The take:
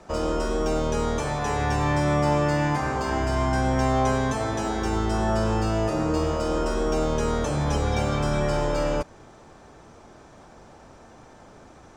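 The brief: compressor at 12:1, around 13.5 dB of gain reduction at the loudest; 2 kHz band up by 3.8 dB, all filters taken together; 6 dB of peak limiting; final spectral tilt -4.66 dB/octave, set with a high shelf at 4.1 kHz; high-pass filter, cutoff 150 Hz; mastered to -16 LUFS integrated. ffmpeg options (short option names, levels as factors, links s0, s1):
-af "highpass=150,equalizer=f=2000:t=o:g=6,highshelf=f=4100:g=-5.5,acompressor=threshold=0.0224:ratio=12,volume=15,alimiter=limit=0.501:level=0:latency=1"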